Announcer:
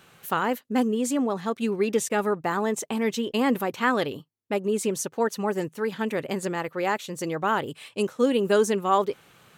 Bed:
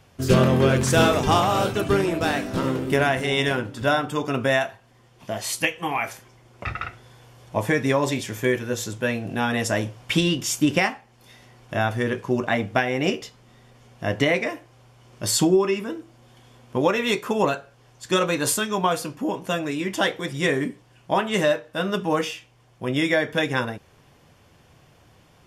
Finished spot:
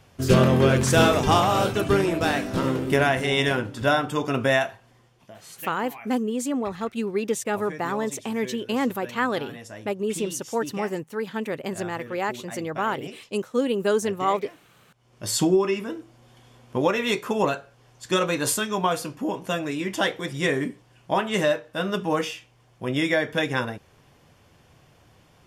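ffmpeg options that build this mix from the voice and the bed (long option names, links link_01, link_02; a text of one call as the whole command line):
ffmpeg -i stem1.wav -i stem2.wav -filter_complex "[0:a]adelay=5350,volume=-1.5dB[link_01];[1:a]volume=15.5dB,afade=type=out:start_time=4.88:duration=0.44:silence=0.141254,afade=type=in:start_time=14.94:duration=0.54:silence=0.16788[link_02];[link_01][link_02]amix=inputs=2:normalize=0" out.wav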